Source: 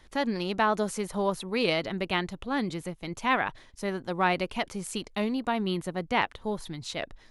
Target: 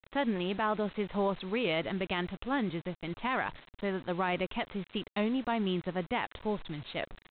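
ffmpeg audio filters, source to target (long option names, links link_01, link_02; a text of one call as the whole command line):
ffmpeg -i in.wav -af "alimiter=limit=-19.5dB:level=0:latency=1:release=26,aresample=8000,acrusher=bits=7:mix=0:aa=0.000001,aresample=44100,volume=-1.5dB" out.wav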